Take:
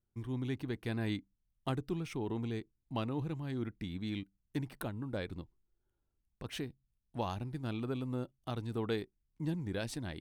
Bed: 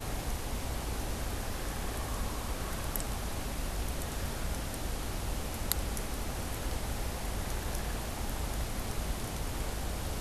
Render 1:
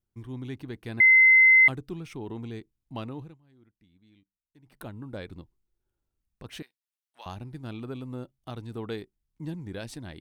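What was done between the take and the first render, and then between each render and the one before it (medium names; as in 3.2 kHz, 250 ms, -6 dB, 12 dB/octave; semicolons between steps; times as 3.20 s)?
1.00–1.68 s: bleep 2.06 kHz -13 dBFS; 3.10–4.90 s: dip -22.5 dB, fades 0.28 s; 6.62–7.26 s: high-pass 1.4 kHz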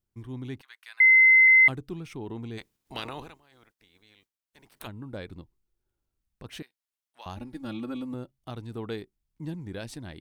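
0.61–1.48 s: high-pass 1.2 kHz 24 dB/octave; 2.57–4.86 s: spectral peaks clipped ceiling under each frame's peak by 25 dB; 7.37–8.14 s: comb 3.6 ms, depth 100%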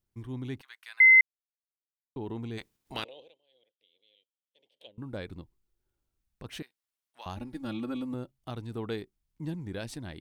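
1.21–2.16 s: mute; 3.04–4.98 s: two resonant band-passes 1.3 kHz, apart 2.6 oct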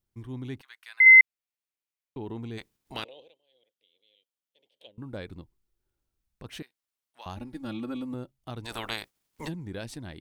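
1.06–2.22 s: peaking EQ 2.4 kHz +6 dB; 8.64–9.47 s: spectral peaks clipped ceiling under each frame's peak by 30 dB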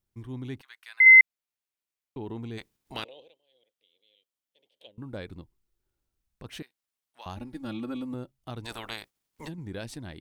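8.73–9.58 s: gain -4 dB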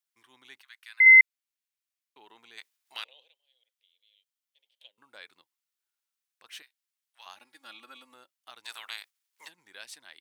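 high-pass 1.4 kHz 12 dB/octave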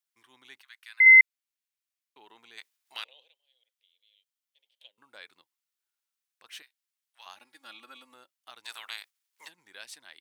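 no audible change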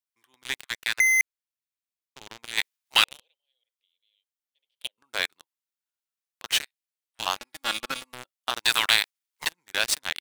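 waveshaping leveller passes 5; compressor with a negative ratio -17 dBFS, ratio -1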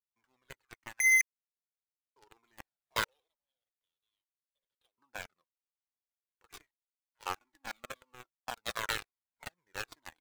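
median filter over 15 samples; Shepard-style flanger falling 1.2 Hz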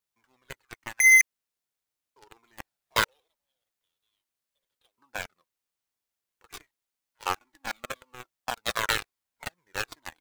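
trim +8 dB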